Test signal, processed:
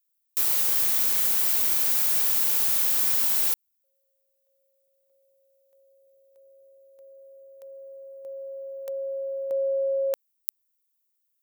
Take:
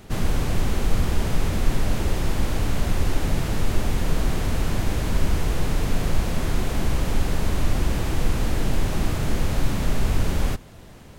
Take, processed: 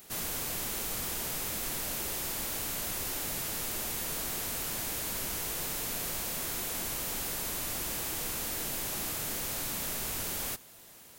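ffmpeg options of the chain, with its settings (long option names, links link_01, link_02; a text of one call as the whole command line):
ffmpeg -i in.wav -af "aemphasis=mode=production:type=riaa,volume=-9dB" out.wav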